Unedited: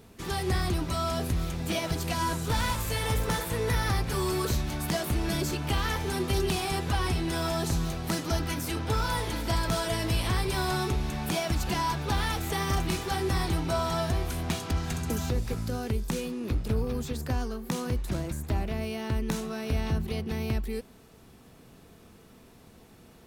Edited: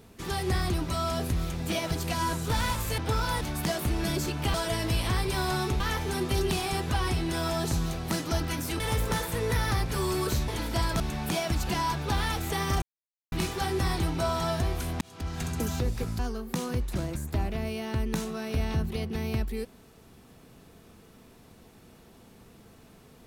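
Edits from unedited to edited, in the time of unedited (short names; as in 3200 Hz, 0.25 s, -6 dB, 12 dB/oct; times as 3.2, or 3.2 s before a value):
2.98–4.66 swap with 8.79–9.22
9.74–11 move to 5.79
12.82 insert silence 0.50 s
14.51–14.97 fade in
15.69–17.35 cut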